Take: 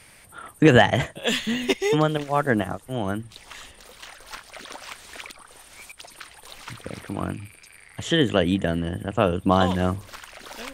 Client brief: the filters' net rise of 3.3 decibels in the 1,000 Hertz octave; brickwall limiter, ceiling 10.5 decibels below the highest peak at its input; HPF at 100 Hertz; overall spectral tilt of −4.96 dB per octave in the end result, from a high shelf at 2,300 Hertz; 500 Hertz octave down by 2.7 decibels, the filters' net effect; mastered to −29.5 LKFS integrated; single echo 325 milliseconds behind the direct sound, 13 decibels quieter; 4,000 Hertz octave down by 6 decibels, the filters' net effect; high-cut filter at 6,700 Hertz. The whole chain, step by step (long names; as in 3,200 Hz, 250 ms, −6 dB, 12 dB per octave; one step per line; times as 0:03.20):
high-pass filter 100 Hz
low-pass filter 6,700 Hz
parametric band 500 Hz −5.5 dB
parametric band 1,000 Hz +8 dB
high-shelf EQ 2,300 Hz −6 dB
parametric band 4,000 Hz −3.5 dB
brickwall limiter −13 dBFS
single-tap delay 325 ms −13 dB
level −2 dB